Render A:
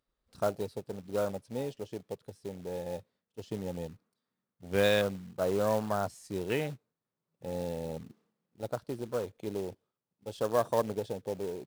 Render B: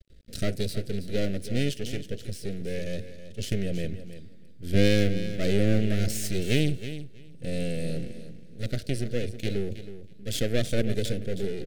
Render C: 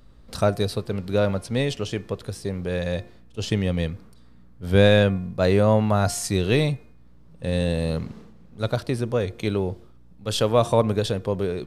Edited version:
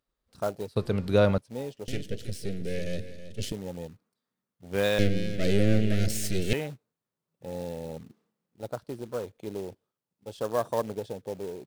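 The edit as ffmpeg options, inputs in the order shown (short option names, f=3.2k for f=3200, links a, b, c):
-filter_complex "[1:a]asplit=2[a][b];[0:a]asplit=4[c][d][e][f];[c]atrim=end=0.762[g];[2:a]atrim=start=0.758:end=1.382[h];[d]atrim=start=1.378:end=1.882[i];[a]atrim=start=1.878:end=3.522[j];[e]atrim=start=3.518:end=4.992[k];[b]atrim=start=4.988:end=6.532[l];[f]atrim=start=6.528[m];[g][h]acrossfade=d=0.004:c1=hsin:c2=hsin[n];[n][i]acrossfade=d=0.004:c1=hsin:c2=hsin[o];[o][j]acrossfade=d=0.004:c1=hsin:c2=hsin[p];[p][k]acrossfade=d=0.004:c1=hsin:c2=hsin[q];[q][l]acrossfade=d=0.004:c1=hsin:c2=hsin[r];[r][m]acrossfade=d=0.004:c1=hsin:c2=hsin"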